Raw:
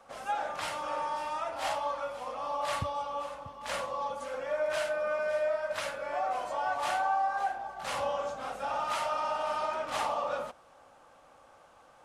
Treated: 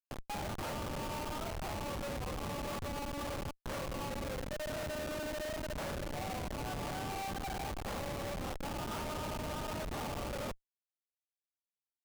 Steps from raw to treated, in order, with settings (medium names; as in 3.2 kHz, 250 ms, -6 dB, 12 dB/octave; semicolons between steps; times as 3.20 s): reverse; compression 16:1, threshold -42 dBFS, peak gain reduction 17 dB; reverse; Schmitt trigger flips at -43.5 dBFS; trim +7.5 dB